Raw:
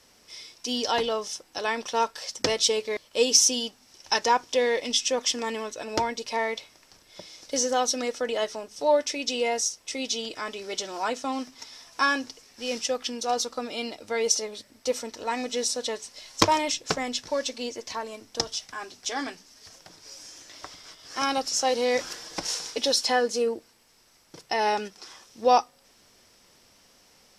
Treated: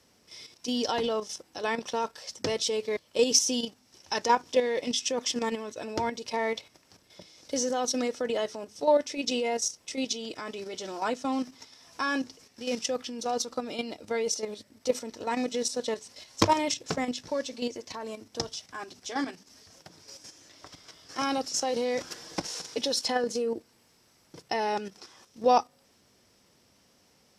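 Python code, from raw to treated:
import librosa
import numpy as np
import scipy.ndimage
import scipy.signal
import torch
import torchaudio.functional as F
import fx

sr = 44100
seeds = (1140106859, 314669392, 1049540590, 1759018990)

y = scipy.signal.sosfilt(scipy.signal.butter(2, 73.0, 'highpass', fs=sr, output='sos'), x)
y = fx.low_shelf(y, sr, hz=420.0, db=8.5)
y = fx.level_steps(y, sr, step_db=9)
y = y * librosa.db_to_amplitude(-1.0)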